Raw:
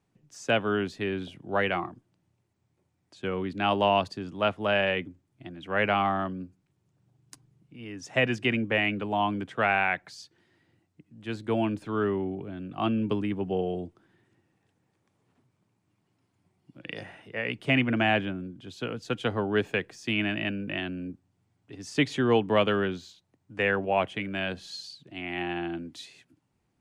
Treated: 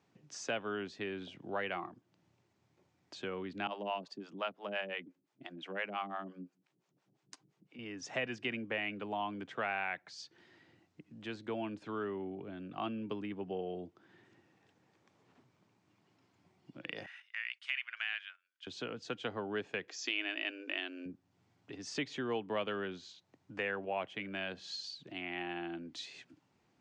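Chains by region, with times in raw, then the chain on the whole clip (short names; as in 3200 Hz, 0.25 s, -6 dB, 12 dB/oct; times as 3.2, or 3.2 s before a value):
3.67–7.79 HPF 160 Hz 24 dB/oct + harmonic tremolo 5.8 Hz, depth 100%, crossover 480 Hz
17.06–18.67 HPF 1500 Hz 24 dB/oct + gate -55 dBFS, range -13 dB
19.88–21.06 high shelf 2600 Hz +11 dB + upward compressor, threshold -42 dBFS + brick-wall FIR band-pass 250–7700 Hz
whole clip: LPF 6800 Hz 24 dB/oct; compressor 2:1, threshold -51 dBFS; HPF 260 Hz 6 dB/oct; gain +5 dB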